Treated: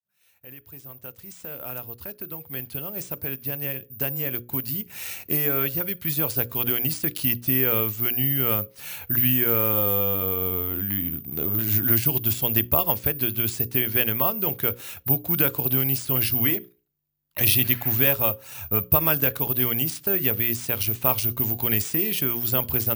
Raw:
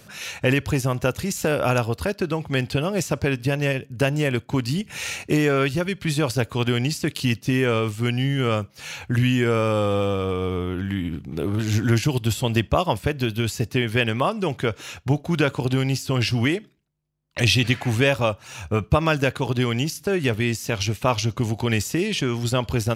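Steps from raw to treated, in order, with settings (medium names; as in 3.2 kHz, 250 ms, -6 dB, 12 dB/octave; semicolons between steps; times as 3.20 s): fade-in on the opening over 7.47 s; careless resampling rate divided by 3×, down none, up zero stuff; hum notches 60/120/180/240/300/360/420/480/540 Hz; trim -5.5 dB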